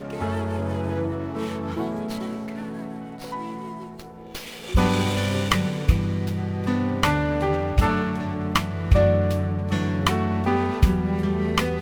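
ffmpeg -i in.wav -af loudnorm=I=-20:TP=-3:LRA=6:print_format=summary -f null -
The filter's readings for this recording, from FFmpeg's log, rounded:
Input Integrated:    -23.6 LUFS
Input True Peak:      -3.9 dBTP
Input LRA:             6.7 LU
Input Threshold:     -34.0 LUFS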